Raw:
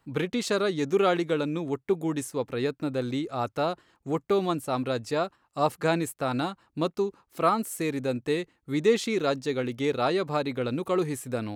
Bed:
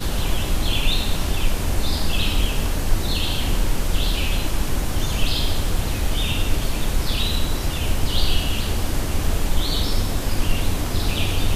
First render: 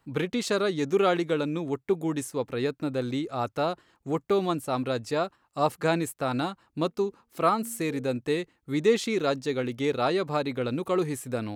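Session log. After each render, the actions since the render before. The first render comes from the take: 6.88–8.05 de-hum 231.9 Hz, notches 2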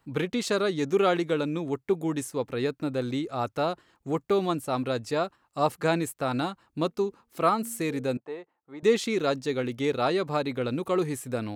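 8.17–8.83 band-pass 810 Hz, Q 2.1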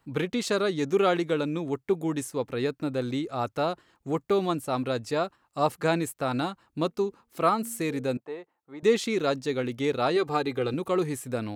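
10.16–10.74 comb 2.5 ms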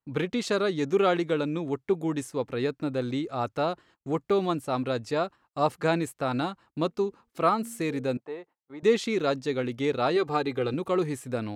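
gate -54 dBFS, range -22 dB; high shelf 10000 Hz -11.5 dB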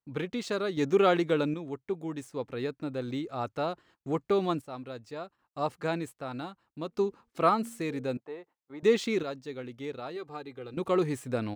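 median filter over 3 samples; random-step tremolo 1.3 Hz, depth 80%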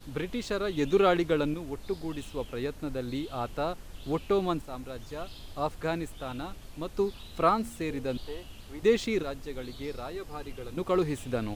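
add bed -24.5 dB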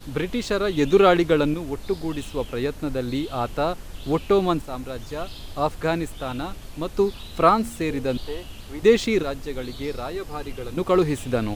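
gain +7.5 dB

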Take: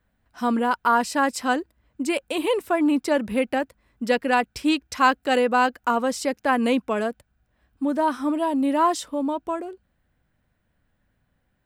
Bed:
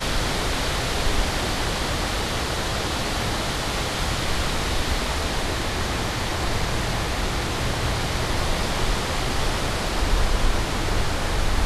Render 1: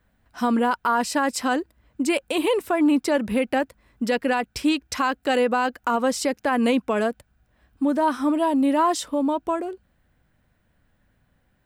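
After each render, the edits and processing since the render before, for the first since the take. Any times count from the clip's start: in parallel at -3 dB: compressor, threshold -28 dBFS, peak gain reduction 14.5 dB; on the sum: limiter -12.5 dBFS, peak gain reduction 8 dB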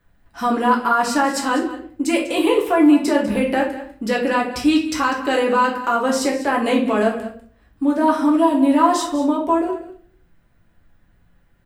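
echo 0.197 s -14.5 dB; shoebox room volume 50 m³, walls mixed, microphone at 0.74 m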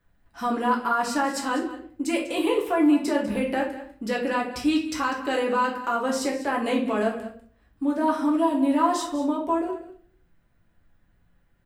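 gain -6.5 dB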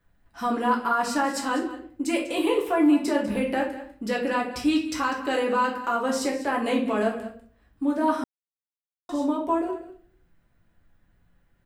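8.24–9.09 mute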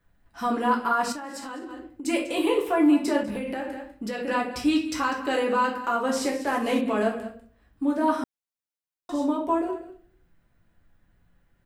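1.12–2.05 compressor 8:1, threshold -33 dBFS; 3.23–4.28 compressor, threshold -27 dBFS; 6.16–6.81 CVSD 64 kbps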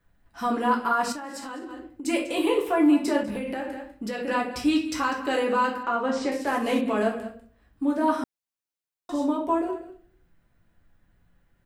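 5.83–6.32 air absorption 120 m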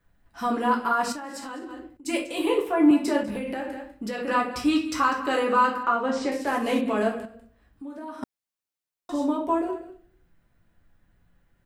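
1.97–2.91 three-band expander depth 70%; 4.17–5.94 bell 1200 Hz +8.5 dB 0.37 oct; 7.25–8.23 compressor 2.5:1, threshold -42 dBFS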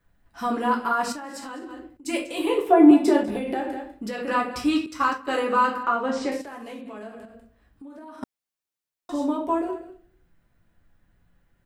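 2.69–4 small resonant body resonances 380/720/3500 Hz, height 14 dB; 4.86–5.56 expander -24 dBFS; 6.41–8.23 compressor 3:1, threshold -40 dBFS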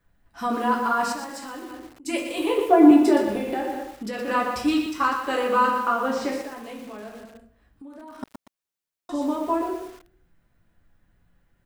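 lo-fi delay 0.119 s, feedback 35%, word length 7-bit, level -7 dB

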